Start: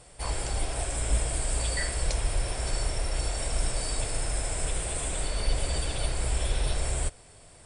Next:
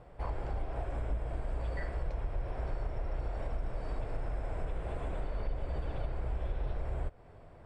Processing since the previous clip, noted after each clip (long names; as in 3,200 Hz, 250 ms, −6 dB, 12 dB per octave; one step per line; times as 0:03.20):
low-pass filter 1,300 Hz 12 dB per octave
downward compressor 3 to 1, threshold −34 dBFS, peak gain reduction 11 dB
level +1 dB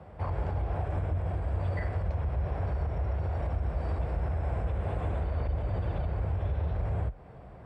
high-shelf EQ 3,800 Hz −8 dB
brickwall limiter −28.5 dBFS, peak gain reduction 4.5 dB
frequency shifter +35 Hz
level +5.5 dB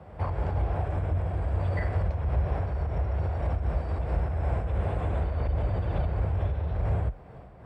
amplitude modulation by smooth noise, depth 60%
level +5.5 dB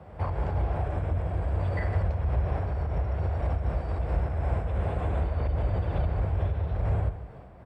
slap from a distant wall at 27 metres, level −12 dB